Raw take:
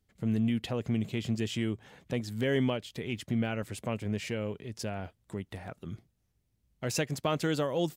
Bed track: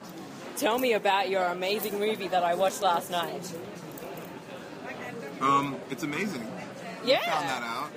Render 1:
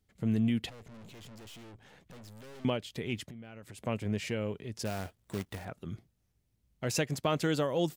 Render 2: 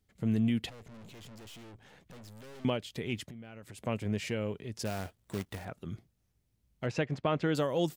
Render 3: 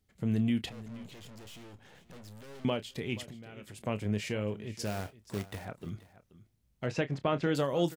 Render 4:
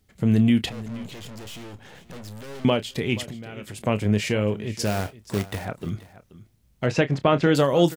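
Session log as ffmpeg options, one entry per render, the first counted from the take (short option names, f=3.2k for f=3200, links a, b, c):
-filter_complex "[0:a]asettb=1/sr,asplit=3[a][b][c];[a]atrim=end=0.694[d];[b]atrim=start=0.69:end=2.65,asetpts=PTS-STARTPTS,afade=t=in:d=0.004:c=qsin,afade=t=out:st=1.956:d=0.004:c=qsin,aeval=exprs='(tanh(282*val(0)+0.6)-tanh(0.6))/282':c=same[e];[c]atrim=start=2.646[f];[d][e]acrossfade=d=0.004:c1=hsin:c2=qsin[g];[g][f]acrossfade=d=0.004:c1=qsin:c2=hsin,asettb=1/sr,asplit=3[h][i][j];[h]atrim=end=3.224[k];[i]atrim=start=3.22:end=3.87,asetpts=PTS-STARTPTS,afade=t=in:d=0.004:c=qsin,afade=t=out:st=0.646:d=0.004:c=qsin,acompressor=threshold=-43dB:ratio=12:attack=3.2:release=140:knee=1:detection=peak[l];[j]atrim=start=3.866[m];[k][l]acrossfade=d=0.004:c1=hsin:c2=qsin[n];[n][m]acrossfade=d=0.004:c1=qsin:c2=hsin,asettb=1/sr,asplit=3[o][p][q];[o]atrim=end=4.854[r];[p]atrim=start=4.85:end=5.65,asetpts=PTS-STARTPTS,afade=t=in:d=0.004:c=qsin,afade=t=out:st=0.796:d=0.004:c=qsin,acrusher=bits=2:mode=log:mix=0:aa=0.000001[s];[q]atrim=start=5.646[t];[r][s]acrossfade=d=0.004:c1=hsin:c2=qsin[u];[u][t]acrossfade=d=0.004:c1=qsin:c2=hsin"
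-filter_complex "[0:a]asettb=1/sr,asplit=3[a][b][c];[a]atrim=end=6.864[d];[b]atrim=start=6.86:end=7.55,asetpts=PTS-STARTPTS,afade=t=in:d=0.004:c=qsin,afade=t=out:st=0.686:d=0.004:c=qsin,lowpass=2.7k[e];[c]atrim=start=7.546[f];[d][e]acrossfade=d=0.004:c1=hsin:c2=qsin[g];[g][f]acrossfade=d=0.004:c1=qsin:c2=hsin"
-filter_complex "[0:a]asplit=2[a][b];[b]adelay=29,volume=-12.5dB[c];[a][c]amix=inputs=2:normalize=0,aecho=1:1:479:0.133"
-af "volume=10.5dB"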